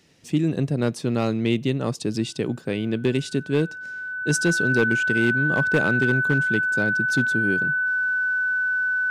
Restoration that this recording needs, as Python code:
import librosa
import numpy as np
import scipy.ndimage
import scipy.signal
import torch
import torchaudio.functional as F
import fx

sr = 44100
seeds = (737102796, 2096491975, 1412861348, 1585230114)

y = fx.fix_declip(x, sr, threshold_db=-12.0)
y = fx.notch(y, sr, hz=1500.0, q=30.0)